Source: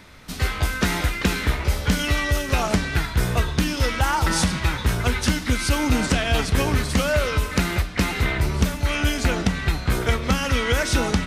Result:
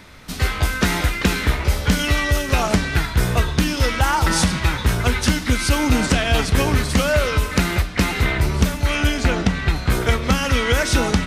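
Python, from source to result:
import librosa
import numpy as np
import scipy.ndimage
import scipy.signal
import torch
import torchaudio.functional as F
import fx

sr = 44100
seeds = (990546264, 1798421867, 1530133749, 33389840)

y = fx.high_shelf(x, sr, hz=8700.0, db=-10.5, at=(9.07, 9.76))
y = y * 10.0 ** (3.0 / 20.0)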